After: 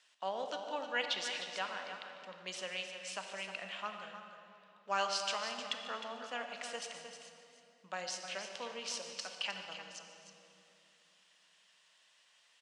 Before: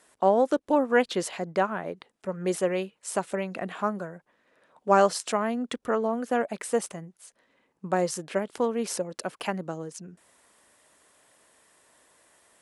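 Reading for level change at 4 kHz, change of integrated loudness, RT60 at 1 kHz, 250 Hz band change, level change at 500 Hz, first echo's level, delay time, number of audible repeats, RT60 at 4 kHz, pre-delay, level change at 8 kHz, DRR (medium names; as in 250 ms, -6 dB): +2.0 dB, -12.0 dB, 2.7 s, -24.0 dB, -18.0 dB, -15.5 dB, 148 ms, 2, 2.0 s, 25 ms, -8.5 dB, 3.5 dB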